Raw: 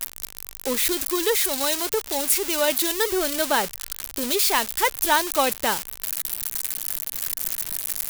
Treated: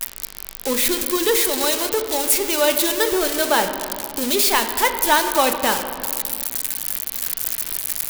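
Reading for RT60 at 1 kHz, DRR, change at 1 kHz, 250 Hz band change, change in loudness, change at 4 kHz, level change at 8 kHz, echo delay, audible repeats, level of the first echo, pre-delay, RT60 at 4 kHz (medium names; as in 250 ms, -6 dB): 2.1 s, 6.0 dB, +4.0 dB, +4.5 dB, +3.5 dB, +3.5 dB, +3.0 dB, no echo, no echo, no echo, 3 ms, 1.3 s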